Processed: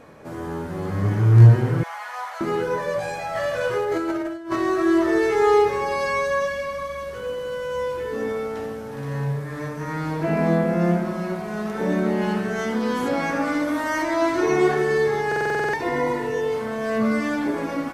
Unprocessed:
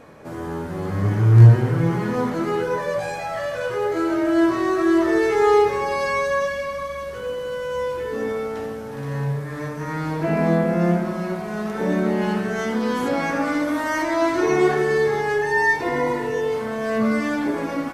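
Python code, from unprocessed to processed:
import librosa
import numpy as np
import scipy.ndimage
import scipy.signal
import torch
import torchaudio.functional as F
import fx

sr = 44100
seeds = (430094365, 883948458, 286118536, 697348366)

y = fx.ellip_highpass(x, sr, hz=680.0, order=4, stop_db=50, at=(1.83, 2.41))
y = fx.over_compress(y, sr, threshold_db=-23.0, ratio=-0.5, at=(3.35, 4.56))
y = fx.buffer_glitch(y, sr, at_s=(15.27,), block=2048, repeats=9)
y = y * librosa.db_to_amplitude(-1.0)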